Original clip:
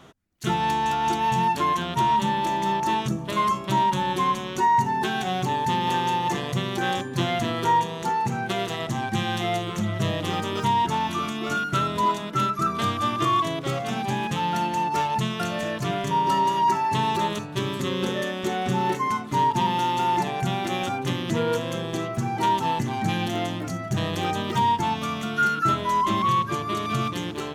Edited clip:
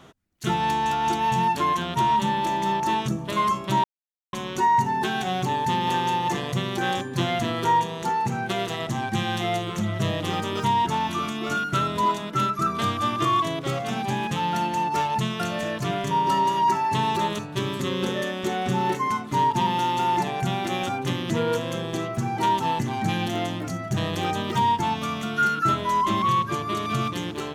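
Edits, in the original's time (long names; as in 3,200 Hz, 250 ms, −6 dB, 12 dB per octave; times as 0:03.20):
0:03.84–0:04.33: silence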